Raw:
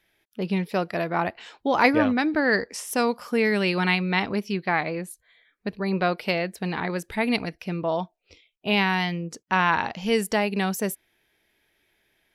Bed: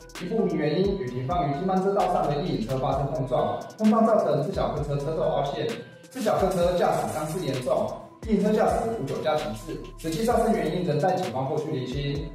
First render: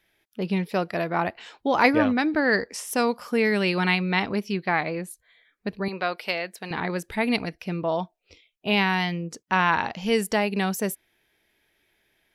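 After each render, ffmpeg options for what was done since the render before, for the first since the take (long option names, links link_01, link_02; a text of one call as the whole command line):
ffmpeg -i in.wav -filter_complex "[0:a]asettb=1/sr,asplit=3[link_01][link_02][link_03];[link_01]atrim=end=5.884[link_04];[link_02]atrim=start=5.88:end=6.71,asetpts=PTS-STARTPTS,afade=type=in:duration=0.004:curve=qsin,afade=type=out:start_time=0.826:duration=0.004:curve=qsin,highpass=frequency=730:poles=1[link_05];[link_03]atrim=start=6.706[link_06];[link_04][link_05]acrossfade=duration=0.004:curve1=hsin:curve2=qsin[link_07];[link_07][link_06]acrossfade=duration=0.004:curve1=qsin:curve2=hsin" out.wav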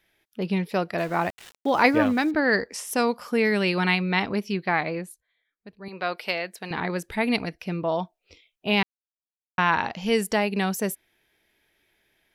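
ffmpeg -i in.wav -filter_complex "[0:a]asettb=1/sr,asplit=3[link_01][link_02][link_03];[link_01]atrim=end=0.984[link_04];[link_02]atrim=start=0.98:end=2.31,asetpts=PTS-STARTPTS,afade=type=in:duration=0.004:curve=qsin,afade=type=out:start_time=1.326:duration=0.004:curve=qsin,aeval=exprs='val(0)*gte(abs(val(0)),0.0106)':channel_layout=same[link_05];[link_03]atrim=start=2.306[link_06];[link_04][link_05]acrossfade=duration=0.004:curve1=hsin:curve2=qsin[link_07];[link_07][link_06]acrossfade=duration=0.004:curve1=qsin:curve2=hsin,asplit=5[link_08][link_09][link_10][link_11][link_12];[link_08]atrim=end=5.27,asetpts=PTS-STARTPTS,afade=type=out:start_time=4.97:duration=0.3:silence=0.177828[link_13];[link_09]atrim=start=5.27:end=5.81,asetpts=PTS-STARTPTS,volume=-15dB[link_14];[link_10]atrim=start=5.81:end=8.83,asetpts=PTS-STARTPTS,afade=type=in:duration=0.3:silence=0.177828,afade=type=out:start_time=3.016:duration=0.004:curve=hsin[link_15];[link_11]atrim=start=8.83:end=9.58,asetpts=PTS-STARTPTS,volume=0[link_16];[link_12]atrim=start=9.58,asetpts=PTS-STARTPTS,afade=type=in:duration=0.004:curve=hsin[link_17];[link_13][link_14][link_15][link_16][link_17]concat=n=5:v=0:a=1" out.wav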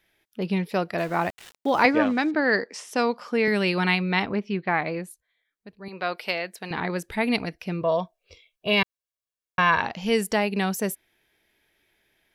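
ffmpeg -i in.wav -filter_complex "[0:a]asettb=1/sr,asplit=3[link_01][link_02][link_03];[link_01]atrim=end=1.854[link_04];[link_02]atrim=start=1.85:end=3.48,asetpts=PTS-STARTPTS,afade=type=in:duration=0.004:curve=qsin,afade=type=out:start_time=1.626:duration=0.004:curve=qsin,highpass=190,lowpass=6000[link_05];[link_03]atrim=start=3.476[link_06];[link_04][link_05]acrossfade=duration=0.004:curve1=hsin:curve2=qsin[link_07];[link_07][link_06]acrossfade=duration=0.004:curve1=qsin:curve2=hsin,asettb=1/sr,asplit=3[link_08][link_09][link_10];[link_08]atrim=end=4.254[link_11];[link_09]atrim=start=4.25:end=4.86,asetpts=PTS-STARTPTS,afade=type=in:duration=0.004:curve=qsin,afade=type=out:start_time=0.606:duration=0.004:curve=qsin,lowpass=2800[link_12];[link_10]atrim=start=4.856[link_13];[link_11][link_12]acrossfade=duration=0.004:curve1=hsin:curve2=qsin[link_14];[link_14][link_13]acrossfade=duration=0.004:curve1=qsin:curve2=hsin,asettb=1/sr,asplit=3[link_15][link_16][link_17];[link_15]atrim=end=7.814[link_18];[link_16]atrim=start=7.81:end=9.81,asetpts=PTS-STARTPTS,afade=type=in:duration=0.004:curve=qsin,afade=type=out:start_time=1.996:duration=0.004:curve=qsin,aecho=1:1:1.8:0.65,atrim=end_sample=88200[link_19];[link_17]atrim=start=9.806[link_20];[link_18][link_19]acrossfade=duration=0.004:curve1=hsin:curve2=qsin[link_21];[link_21][link_20]acrossfade=duration=0.004:curve1=qsin:curve2=hsin" out.wav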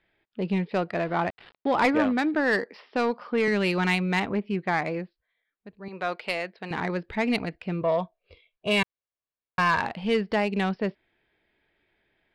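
ffmpeg -i in.wav -af "aresample=11025,asoftclip=type=tanh:threshold=-14dB,aresample=44100,adynamicsmooth=sensitivity=2:basefreq=3200" out.wav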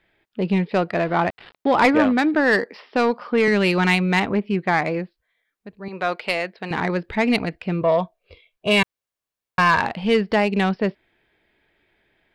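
ffmpeg -i in.wav -af "volume=6dB" out.wav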